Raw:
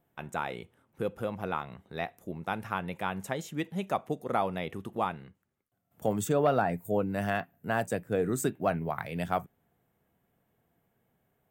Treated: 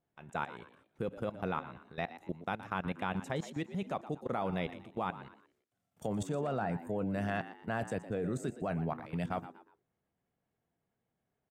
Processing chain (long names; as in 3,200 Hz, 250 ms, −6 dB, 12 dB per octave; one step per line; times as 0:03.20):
dynamic equaliser 150 Hz, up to +4 dB, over −42 dBFS, Q 1
low-pass filter 7,900 Hz 12 dB per octave
0:05.22–0:06.07: high-shelf EQ 2,200 Hz +8.5 dB
output level in coarse steps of 17 dB
echo with shifted repeats 119 ms, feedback 35%, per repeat +77 Hz, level −14 dB